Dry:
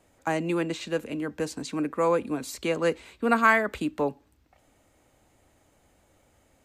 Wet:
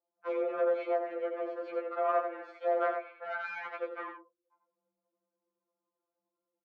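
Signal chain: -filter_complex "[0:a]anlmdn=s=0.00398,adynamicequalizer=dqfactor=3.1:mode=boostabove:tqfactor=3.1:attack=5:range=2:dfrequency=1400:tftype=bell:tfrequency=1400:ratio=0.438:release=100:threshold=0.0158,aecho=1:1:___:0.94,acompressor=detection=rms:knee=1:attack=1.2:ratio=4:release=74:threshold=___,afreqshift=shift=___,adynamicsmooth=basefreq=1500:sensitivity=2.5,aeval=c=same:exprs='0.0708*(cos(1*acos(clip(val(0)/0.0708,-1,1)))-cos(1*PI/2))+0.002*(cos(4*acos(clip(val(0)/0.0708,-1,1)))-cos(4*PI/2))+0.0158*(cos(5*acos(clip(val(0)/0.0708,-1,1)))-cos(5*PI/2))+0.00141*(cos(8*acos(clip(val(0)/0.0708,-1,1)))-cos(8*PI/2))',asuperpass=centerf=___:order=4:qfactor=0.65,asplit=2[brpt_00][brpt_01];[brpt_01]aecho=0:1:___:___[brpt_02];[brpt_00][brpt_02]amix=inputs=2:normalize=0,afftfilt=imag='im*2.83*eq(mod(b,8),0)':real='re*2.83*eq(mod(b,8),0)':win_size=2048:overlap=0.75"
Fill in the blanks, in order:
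6.8, -31dB, 190, 1000, 89, 0.473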